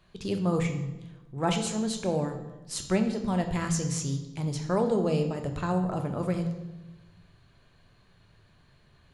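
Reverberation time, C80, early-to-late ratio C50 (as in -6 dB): 1.1 s, 11.0 dB, 9.0 dB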